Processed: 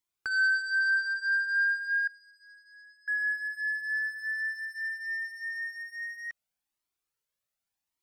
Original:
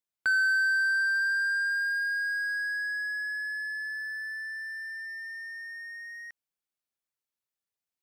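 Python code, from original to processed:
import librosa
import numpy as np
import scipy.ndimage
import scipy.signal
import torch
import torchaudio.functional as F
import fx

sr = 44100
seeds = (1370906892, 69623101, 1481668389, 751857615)

y = fx.double_bandpass(x, sr, hz=1600.0, octaves=1.3, at=(2.07, 3.08))
y = 10.0 ** (-29.0 / 20.0) * np.tanh(y / 10.0 ** (-29.0 / 20.0))
y = fx.comb_cascade(y, sr, direction='rising', hz=0.88)
y = F.gain(torch.from_numpy(y), 8.0).numpy()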